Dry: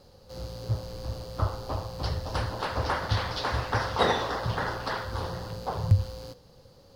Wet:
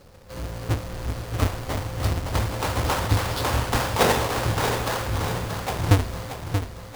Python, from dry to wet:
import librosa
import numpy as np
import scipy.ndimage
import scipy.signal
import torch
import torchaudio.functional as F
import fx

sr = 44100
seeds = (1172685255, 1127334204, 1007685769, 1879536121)

y = fx.halfwave_hold(x, sr)
y = fx.echo_feedback(y, sr, ms=631, feedback_pct=45, wet_db=-7.5)